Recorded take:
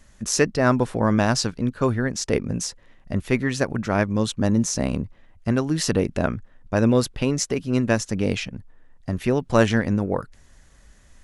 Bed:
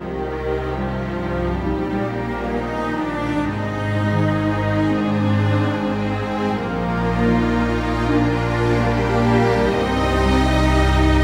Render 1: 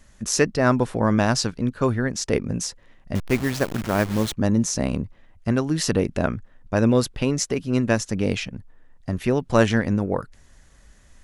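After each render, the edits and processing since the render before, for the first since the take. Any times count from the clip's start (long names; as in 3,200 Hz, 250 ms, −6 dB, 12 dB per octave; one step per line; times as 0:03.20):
0:03.15–0:04.33: hold until the input has moved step −27 dBFS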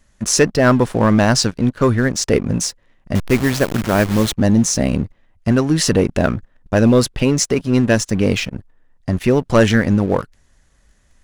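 leveller curve on the samples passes 2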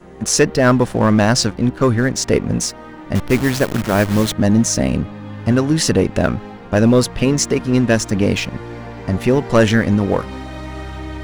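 mix in bed −13.5 dB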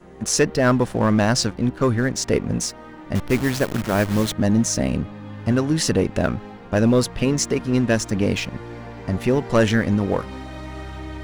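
level −4.5 dB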